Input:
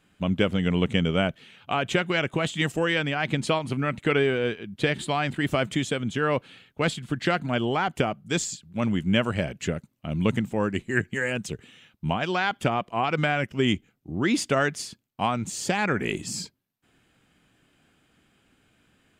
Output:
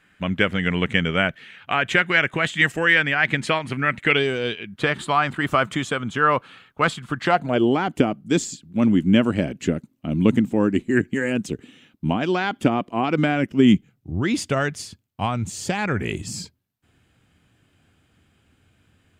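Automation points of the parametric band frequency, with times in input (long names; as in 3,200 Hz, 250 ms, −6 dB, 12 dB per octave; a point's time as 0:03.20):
parametric band +12.5 dB 1 octave
0:04.05 1,800 Hz
0:04.32 7,100 Hz
0:04.82 1,200 Hz
0:07.22 1,200 Hz
0:07.68 280 Hz
0:13.55 280 Hz
0:14.13 87 Hz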